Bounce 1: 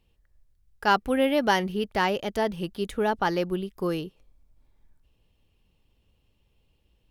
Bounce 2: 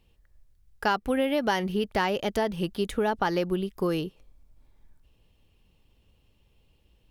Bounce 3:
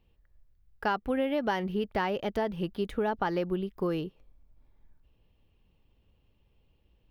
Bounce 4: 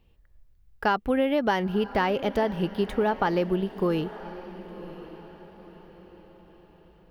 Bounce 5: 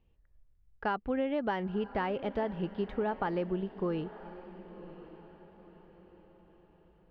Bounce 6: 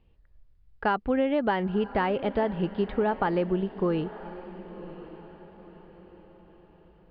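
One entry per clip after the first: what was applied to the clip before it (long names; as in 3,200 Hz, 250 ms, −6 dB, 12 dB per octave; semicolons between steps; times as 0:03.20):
downward compressor 4 to 1, threshold −26 dBFS, peak gain reduction 9 dB; level +3.5 dB
parametric band 8,600 Hz −13 dB 1.8 octaves; level −3 dB
feedback delay with all-pass diffusion 1,031 ms, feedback 41%, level −15 dB; level +5 dB
high-frequency loss of the air 260 metres; level −7 dB
downsampling to 11,025 Hz; level +6.5 dB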